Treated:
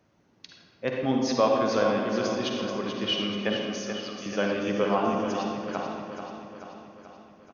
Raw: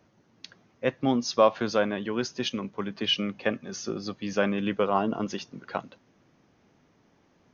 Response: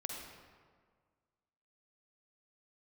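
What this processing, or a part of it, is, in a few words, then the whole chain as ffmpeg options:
stairwell: -filter_complex "[0:a]asettb=1/sr,asplit=3[a][b][c];[a]atrim=end=3.864[d];[b]atrim=start=3.86:end=4.26,asetpts=PTS-STARTPTS,afade=t=in:d=0.004:c=qsin,afade=t=out:st=0.396:d=0.004:c=qsin,highpass=f=570:w=0.5412,highpass=f=570:w=1.3066[e];[c]atrim=start=4.256[f];[d][e]acrossfade=d=0.004:c1=hsin:c2=qsin[g];[g][f]acrossfade=d=0.004:c1=qsin:c2=hsin[h];[1:a]atrim=start_sample=2205[i];[h][i]afir=irnorm=-1:irlink=0,aecho=1:1:434|868|1302|1736|2170|2604|3038:0.398|0.227|0.129|0.0737|0.042|0.024|0.0137"

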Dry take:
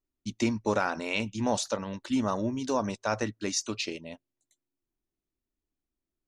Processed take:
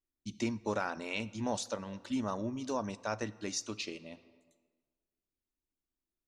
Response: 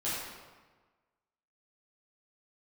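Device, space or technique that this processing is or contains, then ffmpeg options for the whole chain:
ducked reverb: -filter_complex "[0:a]asplit=3[a][b][c];[1:a]atrim=start_sample=2205[d];[b][d]afir=irnorm=-1:irlink=0[e];[c]apad=whole_len=276808[f];[e][f]sidechaincompress=threshold=-33dB:ratio=8:attack=35:release=727,volume=-16dB[g];[a][g]amix=inputs=2:normalize=0,volume=-7dB"

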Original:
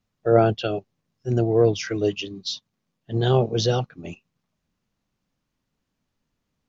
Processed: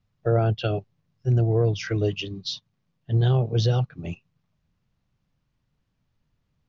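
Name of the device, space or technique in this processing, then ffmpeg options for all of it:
jukebox: -af "lowpass=5.2k,lowshelf=f=180:t=q:w=1.5:g=7,acompressor=threshold=-19dB:ratio=3"

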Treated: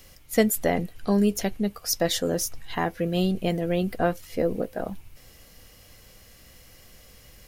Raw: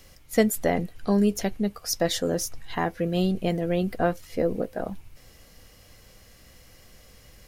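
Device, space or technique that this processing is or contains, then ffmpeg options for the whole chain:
presence and air boost: -af "equalizer=f=2.9k:t=o:w=0.77:g=2,highshelf=f=11k:g=7"

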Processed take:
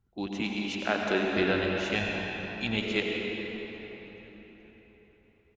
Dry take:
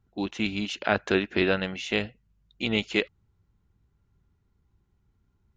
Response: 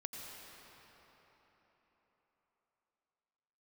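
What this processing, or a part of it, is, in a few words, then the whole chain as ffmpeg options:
cathedral: -filter_complex "[0:a]asettb=1/sr,asplit=3[a][b][c];[a]atrim=end=0.414[d];[b]atrim=start=0.41:end=1.25,asetpts=PTS-STARTPTS,afade=t=in:d=0.004:c=qsin,afade=t=out:st=0.836:d=0.004:c=qsin,highpass=f=180:w=0.5412,highpass=f=180:w=1.3066[e];[c]atrim=start=1.246[f];[d][e]acrossfade=d=0.004:c1=hsin:c2=qsin[g];[g][f]acrossfade=d=0.004:c1=qsin:c2=hsin[h];[1:a]atrim=start_sample=2205[i];[h][i]afir=irnorm=-1:irlink=0,asettb=1/sr,asplit=3[j][k][l];[j]atrim=end=1.954[m];[k]atrim=start=1.95:end=2.77,asetpts=PTS-STARTPTS,afade=t=in:d=0.004:c=qsin,afade=t=out:st=0.816:d=0.004:c=qsin,aecho=1:1:1.2:0.52,atrim=end_sample=36162[n];[l]atrim=start=2.766[o];[m][n]acrossfade=d=0.004:c1=hsin:c2=qsin[p];[p][o]acrossfade=d=0.004:c1=qsin:c2=hsin,asplit=5[q][r][s][t][u];[r]adelay=425,afreqshift=-120,volume=-24dB[v];[s]adelay=850,afreqshift=-240,volume=-28.9dB[w];[t]adelay=1275,afreqshift=-360,volume=-33.8dB[x];[u]adelay=1700,afreqshift=-480,volume=-38.6dB[y];[q][v][w][x][y]amix=inputs=5:normalize=0"

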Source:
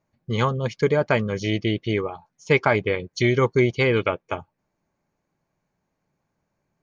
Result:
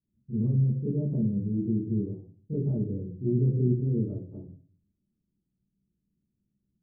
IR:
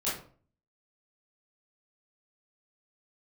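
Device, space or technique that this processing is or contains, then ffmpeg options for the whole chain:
next room: -filter_complex "[0:a]lowpass=f=280:w=0.5412,lowpass=f=280:w=1.3066[a];[1:a]atrim=start_sample=2205[b];[a][b]afir=irnorm=-1:irlink=0,asettb=1/sr,asplit=3[c][d][e];[c]atrim=end=3.154[f];[d]atrim=start=3.15:end=4.08,asetpts=PTS-STARTPTS,afade=t=in:d=0.004:c=qsin,afade=t=out:st=0.926:d=0.004:c=qsin,equalizer=f=1.1k:w=1.5:g=-5.5[g];[e]atrim=start=4.076[h];[f][g]acrossfade=d=0.004:c1=hsin:c2=qsin[i];[i][h]acrossfade=d=0.004:c1=qsin:c2=hsin,volume=-8dB"

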